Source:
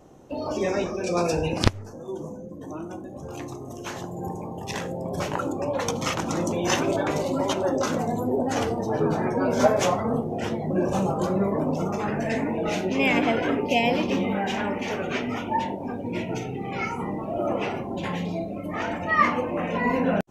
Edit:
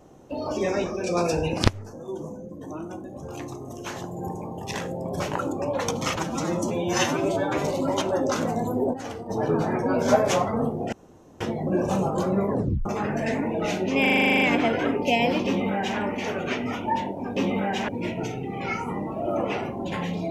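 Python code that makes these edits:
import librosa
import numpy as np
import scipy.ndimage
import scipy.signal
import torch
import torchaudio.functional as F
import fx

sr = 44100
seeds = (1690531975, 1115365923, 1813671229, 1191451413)

y = fx.edit(x, sr, fx.stretch_span(start_s=6.16, length_s=0.97, factor=1.5),
    fx.clip_gain(start_s=8.45, length_s=0.36, db=-9.5),
    fx.insert_room_tone(at_s=10.44, length_s=0.48),
    fx.tape_stop(start_s=11.54, length_s=0.35),
    fx.stutter(start_s=13.05, slice_s=0.04, count=11),
    fx.duplicate(start_s=14.1, length_s=0.52, to_s=16.0), tone=tone)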